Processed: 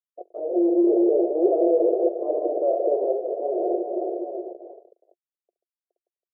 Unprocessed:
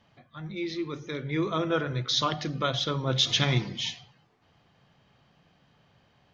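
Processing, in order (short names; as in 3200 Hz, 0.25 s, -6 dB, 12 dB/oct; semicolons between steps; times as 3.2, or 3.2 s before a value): tracing distortion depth 0.028 ms; hard clip -24 dBFS, distortion -10 dB; feedback echo 0.415 s, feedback 33%, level -11.5 dB; on a send at -3 dB: reverb, pre-delay 6 ms; on the sum: fuzz box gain 44 dB, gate -51 dBFS; Chebyshev band-pass 350–700 Hz, order 4; AAC 192 kbps 48000 Hz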